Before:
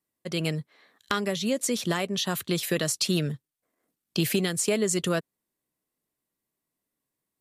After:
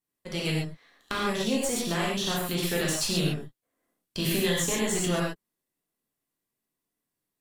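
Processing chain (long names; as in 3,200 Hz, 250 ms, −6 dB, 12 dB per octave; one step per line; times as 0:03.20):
gain on one half-wave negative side −7 dB
0:04.40–0:04.88: EQ curve with evenly spaced ripples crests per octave 1.1, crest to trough 9 dB
reverb whose tail is shaped and stops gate 160 ms flat, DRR −5 dB
level −4 dB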